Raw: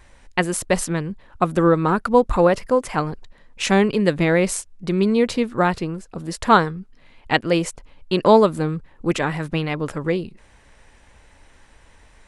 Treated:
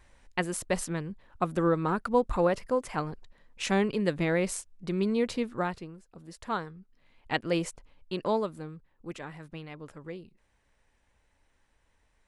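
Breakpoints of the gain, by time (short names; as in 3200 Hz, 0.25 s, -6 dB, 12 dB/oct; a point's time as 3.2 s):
5.5 s -9.5 dB
5.93 s -18 dB
6.6 s -18 dB
7.6 s -8.5 dB
8.76 s -19 dB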